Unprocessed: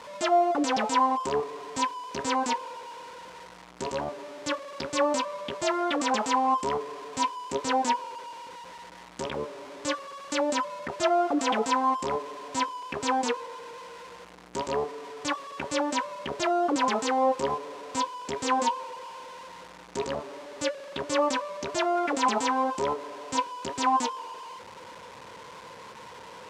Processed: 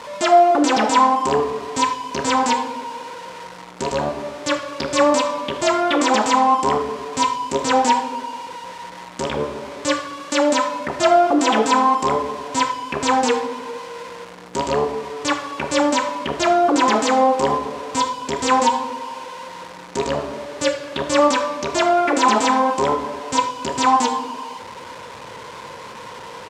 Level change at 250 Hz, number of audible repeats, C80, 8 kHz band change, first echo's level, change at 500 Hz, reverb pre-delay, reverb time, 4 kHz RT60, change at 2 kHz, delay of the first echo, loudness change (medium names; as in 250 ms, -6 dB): +9.5 dB, 1, 11.5 dB, +9.0 dB, -15.5 dB, +9.5 dB, 8 ms, 1.3 s, 0.85 s, +9.5 dB, 76 ms, +9.5 dB